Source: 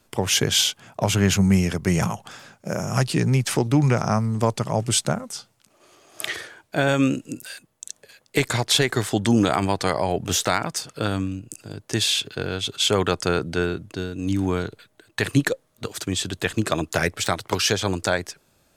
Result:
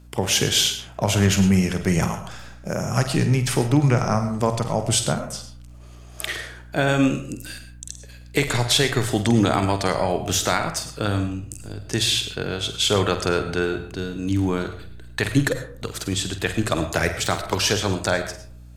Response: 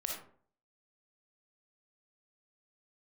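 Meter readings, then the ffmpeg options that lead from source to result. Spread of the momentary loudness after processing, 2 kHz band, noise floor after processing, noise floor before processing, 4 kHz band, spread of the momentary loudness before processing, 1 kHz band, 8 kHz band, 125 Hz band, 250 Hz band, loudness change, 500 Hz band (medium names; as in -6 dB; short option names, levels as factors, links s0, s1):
15 LU, +0.5 dB, -42 dBFS, -64 dBFS, +0.5 dB, 15 LU, +0.5 dB, +0.5 dB, +1.0 dB, +0.5 dB, +0.5 dB, +0.5 dB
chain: -filter_complex "[0:a]aeval=exprs='val(0)+0.00501*(sin(2*PI*60*n/s)+sin(2*PI*2*60*n/s)/2+sin(2*PI*3*60*n/s)/3+sin(2*PI*4*60*n/s)/4+sin(2*PI*5*60*n/s)/5)':c=same,asplit=2[s0][s1];[s1]asubboost=boost=5:cutoff=96[s2];[1:a]atrim=start_sample=2205,adelay=48[s3];[s2][s3]afir=irnorm=-1:irlink=0,volume=0.376[s4];[s0][s4]amix=inputs=2:normalize=0"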